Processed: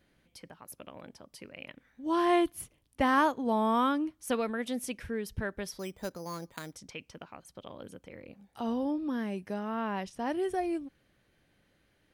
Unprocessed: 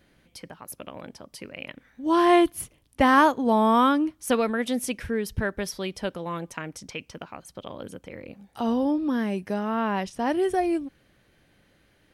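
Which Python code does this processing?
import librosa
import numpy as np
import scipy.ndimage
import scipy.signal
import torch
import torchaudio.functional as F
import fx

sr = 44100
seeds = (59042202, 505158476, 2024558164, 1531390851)

y = fx.resample_bad(x, sr, factor=8, down='filtered', up='hold', at=(5.79, 6.76))
y = F.gain(torch.from_numpy(y), -7.5).numpy()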